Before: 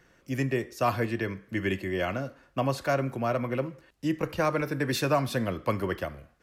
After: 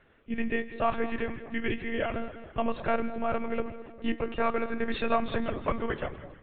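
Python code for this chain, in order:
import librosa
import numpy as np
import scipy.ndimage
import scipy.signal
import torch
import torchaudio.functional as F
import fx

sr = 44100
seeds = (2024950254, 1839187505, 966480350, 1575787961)

y = fx.echo_split(x, sr, split_hz=1100.0, low_ms=206, high_ms=158, feedback_pct=52, wet_db=-13.5)
y = fx.lpc_monotone(y, sr, seeds[0], pitch_hz=230.0, order=16)
y = y * librosa.db_to_amplitude(-1.0)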